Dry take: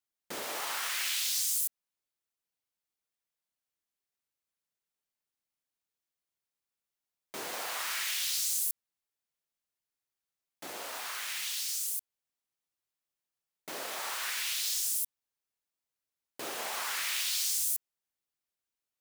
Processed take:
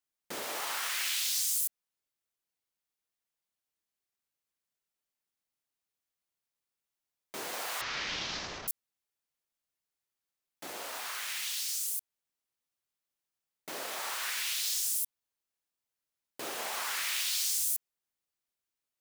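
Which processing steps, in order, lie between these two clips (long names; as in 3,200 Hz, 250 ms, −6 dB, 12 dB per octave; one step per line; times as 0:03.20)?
0:07.81–0:08.68: variable-slope delta modulation 32 kbit/s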